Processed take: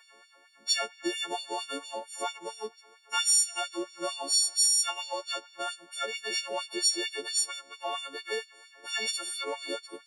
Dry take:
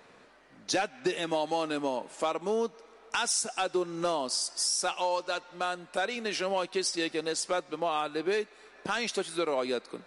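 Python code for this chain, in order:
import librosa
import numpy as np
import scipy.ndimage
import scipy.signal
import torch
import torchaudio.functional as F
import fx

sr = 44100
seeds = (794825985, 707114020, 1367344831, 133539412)

y = fx.freq_snap(x, sr, grid_st=4)
y = fx.filter_lfo_highpass(y, sr, shape='sine', hz=4.4, low_hz=300.0, high_hz=4100.0, q=1.5)
y = y * 10.0 ** (-6.5 / 20.0)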